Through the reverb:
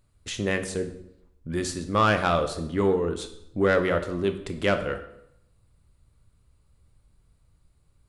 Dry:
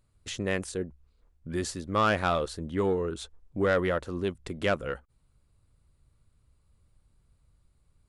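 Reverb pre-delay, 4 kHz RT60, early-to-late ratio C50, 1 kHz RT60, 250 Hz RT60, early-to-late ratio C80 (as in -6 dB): 11 ms, 0.65 s, 11.0 dB, 0.75 s, 0.80 s, 13.5 dB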